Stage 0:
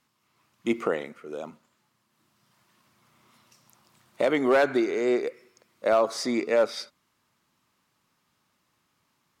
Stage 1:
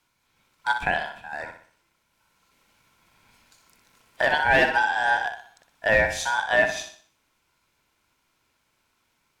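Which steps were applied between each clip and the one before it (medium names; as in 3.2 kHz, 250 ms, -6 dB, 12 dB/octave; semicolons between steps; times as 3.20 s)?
flutter echo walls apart 10.5 m, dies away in 0.47 s; ring modulator 1.2 kHz; trim +4 dB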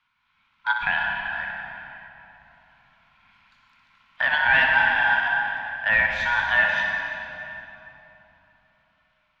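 FFT filter 250 Hz 0 dB, 370 Hz -20 dB, 1.1 kHz +10 dB, 3.2 kHz +8 dB, 8.8 kHz -21 dB; reverberation RT60 3.4 s, pre-delay 89 ms, DRR 1.5 dB; trim -7 dB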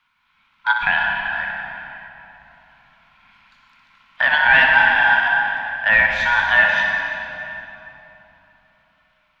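peaking EQ 99 Hz -6.5 dB 0.59 oct; trim +5.5 dB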